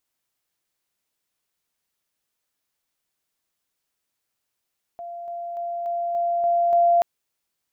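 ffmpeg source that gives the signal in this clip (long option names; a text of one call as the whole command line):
ffmpeg -f lavfi -i "aevalsrc='pow(10,(-32+3*floor(t/0.29))/20)*sin(2*PI*690*t)':duration=2.03:sample_rate=44100" out.wav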